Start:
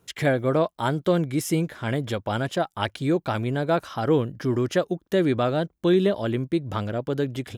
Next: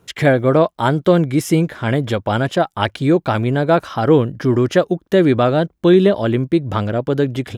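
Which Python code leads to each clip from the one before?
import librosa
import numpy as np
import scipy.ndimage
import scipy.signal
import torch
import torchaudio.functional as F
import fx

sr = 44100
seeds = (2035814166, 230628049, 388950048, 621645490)

y = fx.high_shelf(x, sr, hz=4700.0, db=-6.5)
y = y * 10.0 ** (8.5 / 20.0)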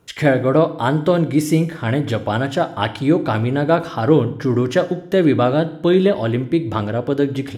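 y = fx.rev_fdn(x, sr, rt60_s=0.66, lf_ratio=1.35, hf_ratio=1.0, size_ms=20.0, drr_db=10.0)
y = y * 10.0 ** (-2.0 / 20.0)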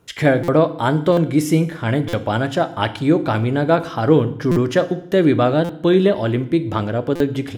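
y = fx.buffer_glitch(x, sr, at_s=(0.43, 1.12, 2.08, 4.51, 5.64, 7.15), block=256, repeats=8)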